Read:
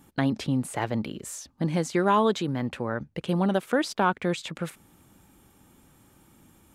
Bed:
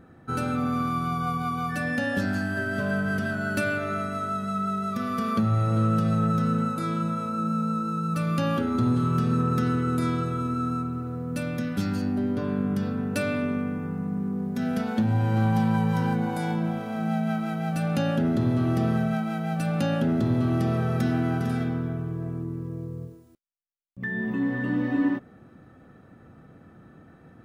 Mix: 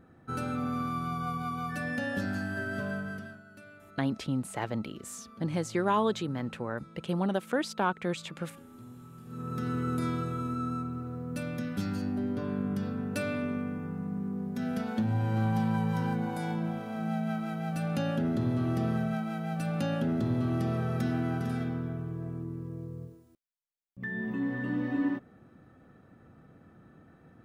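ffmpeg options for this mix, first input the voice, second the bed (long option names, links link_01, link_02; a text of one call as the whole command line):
ffmpeg -i stem1.wav -i stem2.wav -filter_complex "[0:a]adelay=3800,volume=-5dB[link_01];[1:a]volume=14dB,afade=type=out:start_time=2.76:duration=0.67:silence=0.105925,afade=type=in:start_time=9.25:duration=0.59:silence=0.1[link_02];[link_01][link_02]amix=inputs=2:normalize=0" out.wav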